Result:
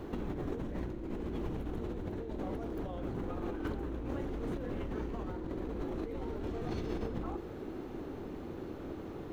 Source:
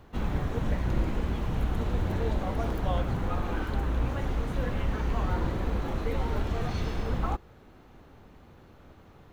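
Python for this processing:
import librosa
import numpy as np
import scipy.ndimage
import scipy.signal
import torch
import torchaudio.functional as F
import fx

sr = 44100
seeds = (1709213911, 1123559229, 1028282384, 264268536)

y = fx.peak_eq(x, sr, hz=340.0, db=14.0, octaves=1.2)
y = fx.over_compress(y, sr, threshold_db=-33.0, ratio=-1.0)
y = F.gain(torch.from_numpy(y), -4.5).numpy()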